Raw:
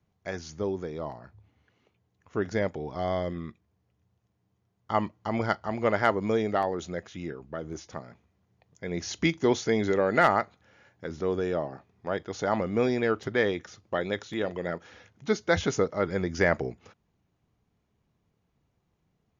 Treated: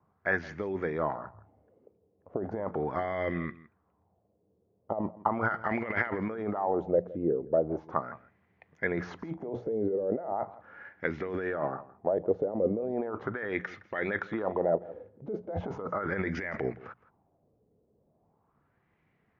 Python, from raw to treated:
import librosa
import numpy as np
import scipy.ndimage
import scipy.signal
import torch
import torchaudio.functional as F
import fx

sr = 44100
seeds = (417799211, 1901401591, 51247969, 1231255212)

p1 = fx.low_shelf(x, sr, hz=81.0, db=-10.5)
p2 = fx.hum_notches(p1, sr, base_hz=60, count=3)
p3 = fx.over_compress(p2, sr, threshold_db=-33.0, ratio=-1.0)
p4 = fx.filter_lfo_lowpass(p3, sr, shape='sine', hz=0.38, low_hz=480.0, high_hz=2100.0, q=3.5)
p5 = p4 + fx.echo_single(p4, sr, ms=165, db=-19.0, dry=0)
y = F.gain(torch.from_numpy(p5), -1.0).numpy()